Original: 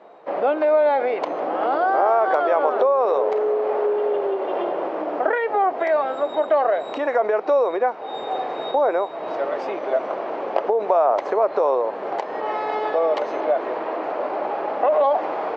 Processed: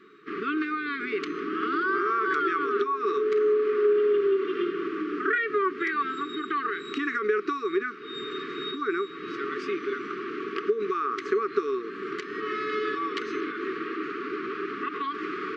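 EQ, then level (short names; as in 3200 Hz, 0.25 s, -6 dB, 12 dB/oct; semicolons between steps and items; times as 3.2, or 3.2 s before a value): brick-wall FIR band-stop 440–1100 Hz; +1.5 dB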